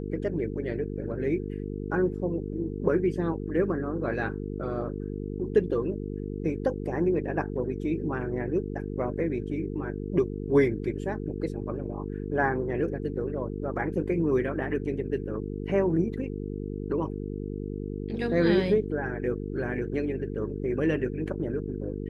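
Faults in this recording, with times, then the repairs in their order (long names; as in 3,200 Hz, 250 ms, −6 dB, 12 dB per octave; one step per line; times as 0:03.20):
mains buzz 50 Hz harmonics 9 −34 dBFS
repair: hum removal 50 Hz, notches 9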